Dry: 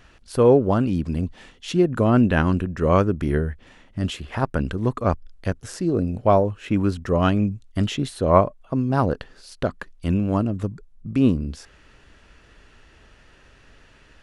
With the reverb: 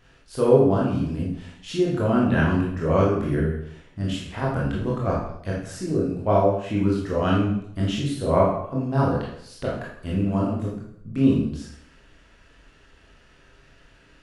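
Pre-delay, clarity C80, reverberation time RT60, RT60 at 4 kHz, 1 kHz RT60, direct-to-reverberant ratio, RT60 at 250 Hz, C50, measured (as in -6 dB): 18 ms, 5.5 dB, 0.70 s, 0.65 s, 0.70 s, -5.0 dB, 0.75 s, 2.0 dB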